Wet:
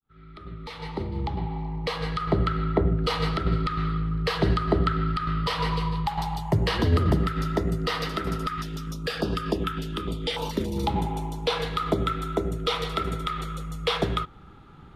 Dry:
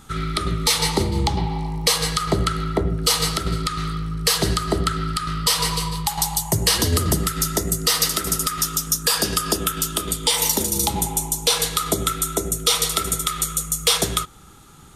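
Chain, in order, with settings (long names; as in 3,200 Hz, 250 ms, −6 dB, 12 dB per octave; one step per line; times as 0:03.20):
fade in at the beginning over 2.94 s
high-frequency loss of the air 390 metres
0:08.48–0:10.77: notch on a step sequencer 6.9 Hz 580–2,000 Hz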